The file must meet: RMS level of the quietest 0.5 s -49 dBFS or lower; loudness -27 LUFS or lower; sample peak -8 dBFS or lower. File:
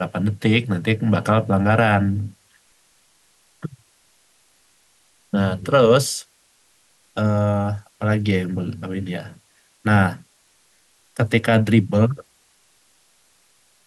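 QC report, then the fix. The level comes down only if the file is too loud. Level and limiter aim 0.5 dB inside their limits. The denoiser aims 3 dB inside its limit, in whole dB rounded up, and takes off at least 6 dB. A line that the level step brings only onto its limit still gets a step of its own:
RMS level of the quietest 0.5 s -60 dBFS: OK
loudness -20.0 LUFS: fail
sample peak -4.0 dBFS: fail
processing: gain -7.5 dB

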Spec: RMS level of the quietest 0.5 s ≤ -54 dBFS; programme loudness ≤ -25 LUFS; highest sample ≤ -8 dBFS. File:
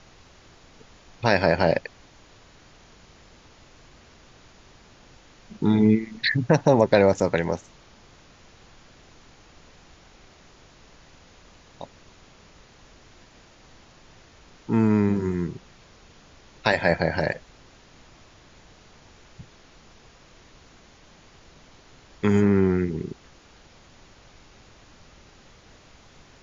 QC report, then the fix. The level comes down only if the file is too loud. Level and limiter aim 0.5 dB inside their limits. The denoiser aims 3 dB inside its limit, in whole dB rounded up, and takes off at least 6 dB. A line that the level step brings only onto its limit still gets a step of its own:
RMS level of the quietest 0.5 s -52 dBFS: fail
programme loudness -22.5 LUFS: fail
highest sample -4.0 dBFS: fail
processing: gain -3 dB; limiter -8.5 dBFS

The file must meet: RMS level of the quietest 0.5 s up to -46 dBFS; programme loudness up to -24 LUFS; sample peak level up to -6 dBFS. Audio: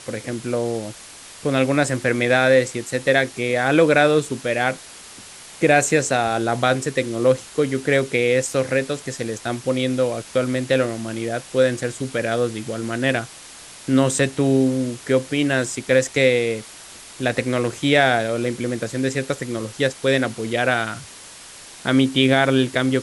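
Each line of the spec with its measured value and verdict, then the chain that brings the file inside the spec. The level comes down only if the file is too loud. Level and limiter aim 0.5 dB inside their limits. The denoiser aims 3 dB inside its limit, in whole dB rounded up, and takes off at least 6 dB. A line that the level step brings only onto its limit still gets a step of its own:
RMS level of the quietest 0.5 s -41 dBFS: fail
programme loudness -20.5 LUFS: fail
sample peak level -3.5 dBFS: fail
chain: denoiser 6 dB, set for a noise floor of -41 dBFS; gain -4 dB

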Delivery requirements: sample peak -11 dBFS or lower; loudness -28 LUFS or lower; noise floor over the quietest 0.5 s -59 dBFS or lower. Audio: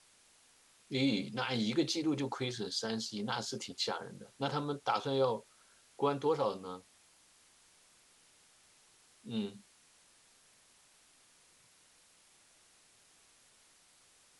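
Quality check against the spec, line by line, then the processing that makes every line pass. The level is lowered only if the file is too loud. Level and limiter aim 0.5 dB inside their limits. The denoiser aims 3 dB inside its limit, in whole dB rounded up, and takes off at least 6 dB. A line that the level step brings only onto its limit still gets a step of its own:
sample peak -18.0 dBFS: OK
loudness -35.5 LUFS: OK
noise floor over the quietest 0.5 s -65 dBFS: OK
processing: none

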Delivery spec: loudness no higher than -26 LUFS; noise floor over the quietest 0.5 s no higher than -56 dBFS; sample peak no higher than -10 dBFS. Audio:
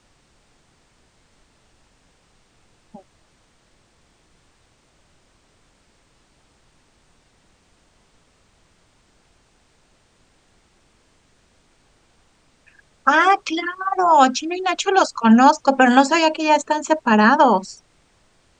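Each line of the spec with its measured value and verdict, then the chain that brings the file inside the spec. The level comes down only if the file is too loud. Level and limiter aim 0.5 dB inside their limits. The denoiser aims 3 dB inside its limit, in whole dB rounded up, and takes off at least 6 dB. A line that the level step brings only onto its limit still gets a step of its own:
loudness -16.5 LUFS: fail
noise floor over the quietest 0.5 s -59 dBFS: OK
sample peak -1.5 dBFS: fail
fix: gain -10 dB

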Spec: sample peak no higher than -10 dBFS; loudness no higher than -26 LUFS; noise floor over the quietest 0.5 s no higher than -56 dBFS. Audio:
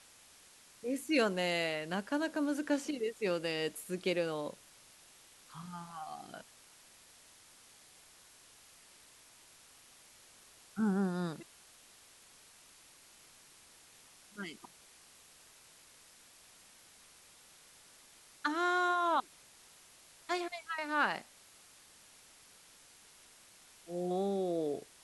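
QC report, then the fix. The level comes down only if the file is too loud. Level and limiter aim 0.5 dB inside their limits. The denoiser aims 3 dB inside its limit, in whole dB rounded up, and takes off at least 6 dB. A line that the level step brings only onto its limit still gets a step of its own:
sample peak -17.5 dBFS: OK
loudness -35.0 LUFS: OK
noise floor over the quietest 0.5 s -60 dBFS: OK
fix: none

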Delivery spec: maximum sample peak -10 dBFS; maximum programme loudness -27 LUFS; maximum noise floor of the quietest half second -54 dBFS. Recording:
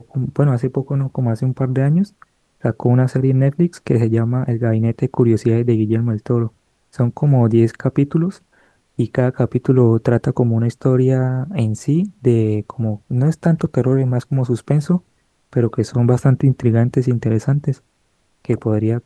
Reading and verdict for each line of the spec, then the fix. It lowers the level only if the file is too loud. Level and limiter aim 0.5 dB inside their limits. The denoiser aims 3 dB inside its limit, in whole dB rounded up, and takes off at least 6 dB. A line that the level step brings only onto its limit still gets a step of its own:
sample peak -2.0 dBFS: fail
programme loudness -17.5 LUFS: fail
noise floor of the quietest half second -63 dBFS: OK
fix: gain -10 dB

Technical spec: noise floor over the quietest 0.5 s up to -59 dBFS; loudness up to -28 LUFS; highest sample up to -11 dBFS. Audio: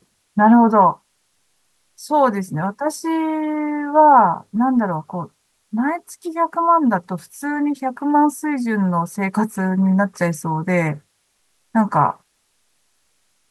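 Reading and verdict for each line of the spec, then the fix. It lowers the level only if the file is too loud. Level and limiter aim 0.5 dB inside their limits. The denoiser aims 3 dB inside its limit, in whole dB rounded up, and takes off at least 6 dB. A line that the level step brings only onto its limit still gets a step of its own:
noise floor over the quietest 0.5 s -65 dBFS: OK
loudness -18.5 LUFS: fail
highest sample -2.5 dBFS: fail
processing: gain -10 dB

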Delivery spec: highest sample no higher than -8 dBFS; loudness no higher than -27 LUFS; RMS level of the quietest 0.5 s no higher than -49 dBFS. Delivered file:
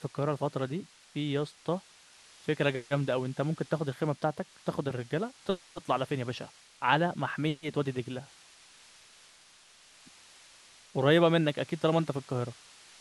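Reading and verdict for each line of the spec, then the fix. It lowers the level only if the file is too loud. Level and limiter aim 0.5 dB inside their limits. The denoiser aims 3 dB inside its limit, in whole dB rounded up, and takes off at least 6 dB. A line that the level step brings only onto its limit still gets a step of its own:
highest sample -9.0 dBFS: OK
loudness -31.5 LUFS: OK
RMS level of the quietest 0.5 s -58 dBFS: OK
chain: none

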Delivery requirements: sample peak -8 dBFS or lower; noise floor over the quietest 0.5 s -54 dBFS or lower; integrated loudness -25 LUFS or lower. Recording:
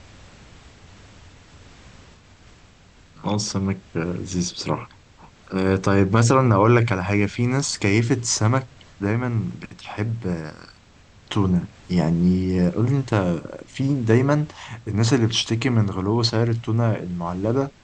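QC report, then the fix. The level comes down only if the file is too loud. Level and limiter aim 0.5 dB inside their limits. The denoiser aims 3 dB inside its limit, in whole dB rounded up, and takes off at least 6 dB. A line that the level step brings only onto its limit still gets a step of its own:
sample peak -3.5 dBFS: fail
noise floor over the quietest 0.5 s -51 dBFS: fail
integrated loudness -21.5 LUFS: fail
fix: gain -4 dB; limiter -8.5 dBFS

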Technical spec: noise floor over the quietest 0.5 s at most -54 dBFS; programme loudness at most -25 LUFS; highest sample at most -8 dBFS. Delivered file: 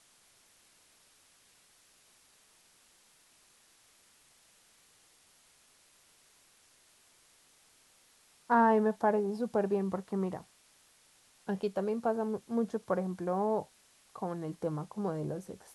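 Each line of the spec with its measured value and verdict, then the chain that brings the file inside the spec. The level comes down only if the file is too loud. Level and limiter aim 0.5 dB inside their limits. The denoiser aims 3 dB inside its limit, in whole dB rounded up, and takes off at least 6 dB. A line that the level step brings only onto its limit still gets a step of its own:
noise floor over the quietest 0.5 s -65 dBFS: OK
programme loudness -32.5 LUFS: OK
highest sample -15.0 dBFS: OK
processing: none

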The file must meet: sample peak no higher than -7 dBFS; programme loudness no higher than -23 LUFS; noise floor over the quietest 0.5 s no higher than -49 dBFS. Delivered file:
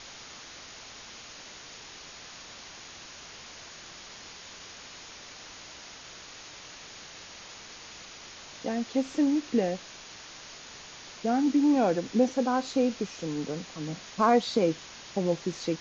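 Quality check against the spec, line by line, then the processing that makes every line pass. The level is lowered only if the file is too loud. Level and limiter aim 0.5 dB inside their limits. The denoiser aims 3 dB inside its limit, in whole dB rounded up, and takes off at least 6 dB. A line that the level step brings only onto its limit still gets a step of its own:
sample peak -12.0 dBFS: OK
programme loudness -28.0 LUFS: OK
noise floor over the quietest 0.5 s -46 dBFS: fail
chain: denoiser 6 dB, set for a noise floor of -46 dBFS

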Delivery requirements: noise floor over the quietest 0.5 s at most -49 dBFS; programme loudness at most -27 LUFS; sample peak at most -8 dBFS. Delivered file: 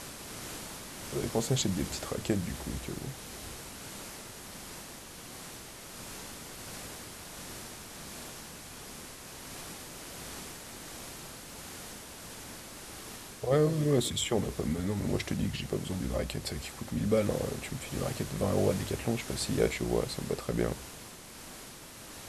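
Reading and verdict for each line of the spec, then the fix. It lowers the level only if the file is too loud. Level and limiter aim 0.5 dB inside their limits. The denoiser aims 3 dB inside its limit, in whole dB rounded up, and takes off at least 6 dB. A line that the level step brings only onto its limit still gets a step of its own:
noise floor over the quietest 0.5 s -48 dBFS: fail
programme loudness -35.0 LUFS: OK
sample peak -12.5 dBFS: OK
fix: denoiser 6 dB, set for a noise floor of -48 dBFS

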